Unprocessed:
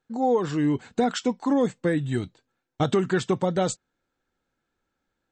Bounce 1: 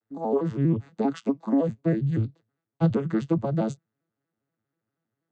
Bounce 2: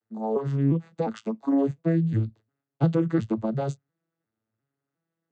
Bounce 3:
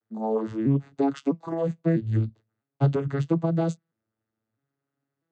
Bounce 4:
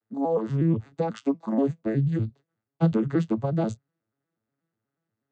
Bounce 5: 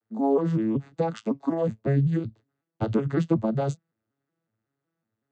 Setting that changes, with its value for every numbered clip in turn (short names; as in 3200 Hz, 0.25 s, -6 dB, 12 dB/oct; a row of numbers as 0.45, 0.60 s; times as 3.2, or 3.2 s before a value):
arpeggiated vocoder, a note every: 80, 353, 651, 121, 186 ms